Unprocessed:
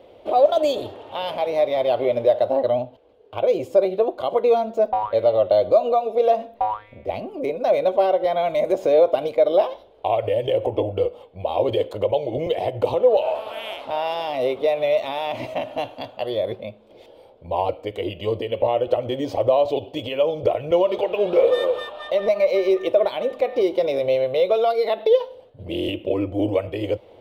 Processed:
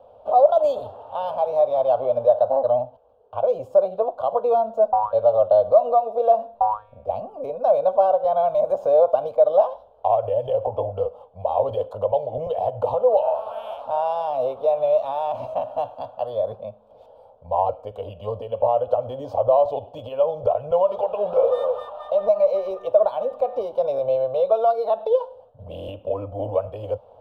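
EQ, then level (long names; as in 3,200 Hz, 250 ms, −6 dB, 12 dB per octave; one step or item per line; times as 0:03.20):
three-way crossover with the lows and the highs turned down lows −13 dB, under 380 Hz, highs −15 dB, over 2,000 Hz
low-shelf EQ 310 Hz +10 dB
phaser with its sweep stopped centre 840 Hz, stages 4
+2.0 dB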